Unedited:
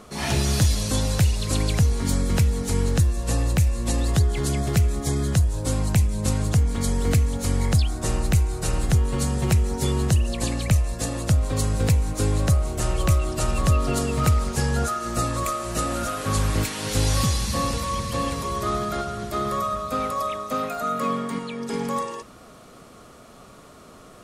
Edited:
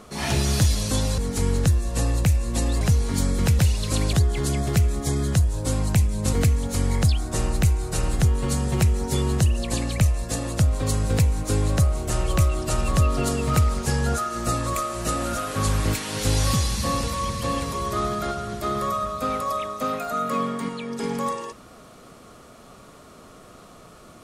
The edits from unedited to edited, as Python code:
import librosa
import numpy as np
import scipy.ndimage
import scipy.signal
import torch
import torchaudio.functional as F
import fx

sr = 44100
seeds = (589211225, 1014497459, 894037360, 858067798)

y = fx.edit(x, sr, fx.swap(start_s=1.18, length_s=0.54, other_s=2.5, other_length_s=1.63),
    fx.cut(start_s=6.33, length_s=0.7), tone=tone)